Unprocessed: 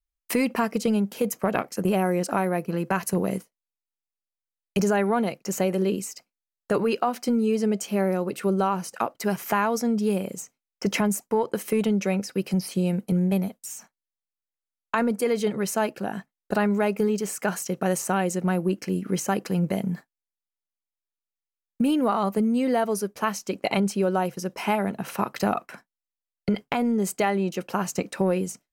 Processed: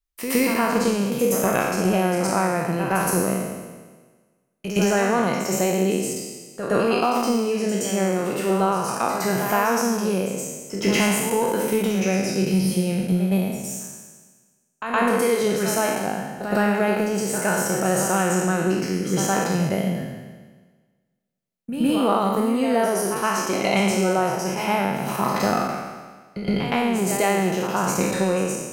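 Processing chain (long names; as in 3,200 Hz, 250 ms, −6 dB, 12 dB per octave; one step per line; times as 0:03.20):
peak hold with a decay on every bin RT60 1.39 s
backwards echo 117 ms −8.5 dB
coupled-rooms reverb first 0.55 s, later 2.1 s, from −19 dB, DRR 16 dB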